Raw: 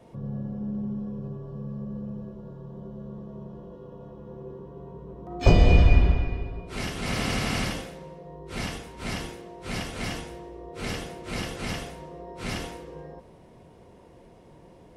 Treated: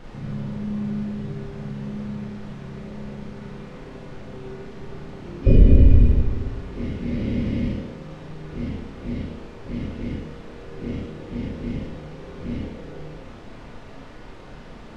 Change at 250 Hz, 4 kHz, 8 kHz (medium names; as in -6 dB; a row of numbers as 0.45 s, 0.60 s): +5.5 dB, -10.5 dB, under -15 dB